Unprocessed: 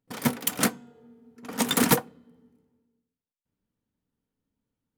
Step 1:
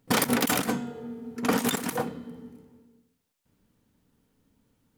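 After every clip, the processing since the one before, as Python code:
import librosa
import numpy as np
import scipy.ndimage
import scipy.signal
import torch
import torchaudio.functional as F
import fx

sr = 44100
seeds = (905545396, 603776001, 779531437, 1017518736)

y = fx.over_compress(x, sr, threshold_db=-35.0, ratio=-1.0)
y = F.gain(torch.from_numpy(y), 7.5).numpy()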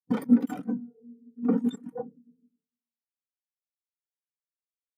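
y = fx.spectral_expand(x, sr, expansion=2.5)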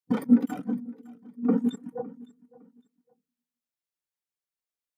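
y = fx.echo_feedback(x, sr, ms=559, feedback_pct=26, wet_db=-21)
y = F.gain(torch.from_numpy(y), 1.0).numpy()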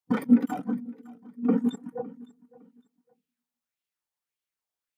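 y = fx.bell_lfo(x, sr, hz=1.7, low_hz=760.0, high_hz=3000.0, db=8)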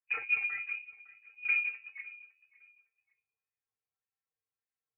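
y = fx.cheby_harmonics(x, sr, harmonics=(4,), levels_db=(-29,), full_scale_db=-8.0)
y = fx.stiff_resonator(y, sr, f0_hz=81.0, decay_s=0.35, stiffness=0.03)
y = fx.freq_invert(y, sr, carrier_hz=2700)
y = F.gain(torch.from_numpy(y), 3.0).numpy()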